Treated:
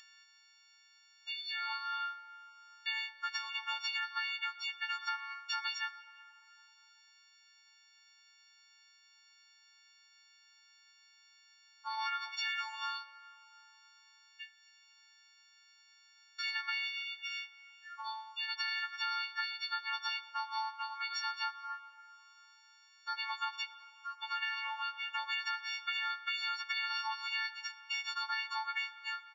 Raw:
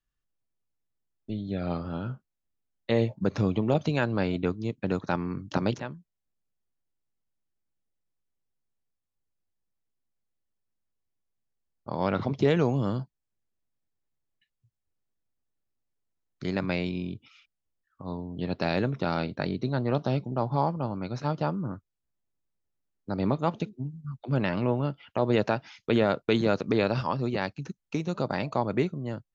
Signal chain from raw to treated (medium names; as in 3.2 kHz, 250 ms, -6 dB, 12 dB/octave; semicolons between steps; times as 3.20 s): partials quantised in pitch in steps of 4 st; steep high-pass 970 Hz 48 dB/octave; treble shelf 4.9 kHz +6 dB; comb 2.2 ms, depth 66%; upward compressor, threshold -31 dBFS; peak limiter -18.5 dBFS, peak gain reduction 8.5 dB; compression, threshold -32 dBFS, peak gain reduction 8.5 dB; on a send at -13 dB: reverberation RT60 3.5 s, pre-delay 5 ms; on the sum: resampled via 16 kHz; trim -2 dB